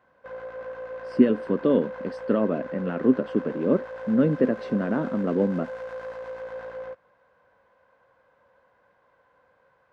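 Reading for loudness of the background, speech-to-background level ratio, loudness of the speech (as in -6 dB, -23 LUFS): -37.0 LUFS, 12.0 dB, -25.0 LUFS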